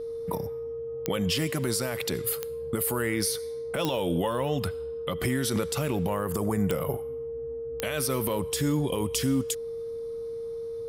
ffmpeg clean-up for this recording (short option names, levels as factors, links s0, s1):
-af "adeclick=t=4,bandreject=f=460:w=30"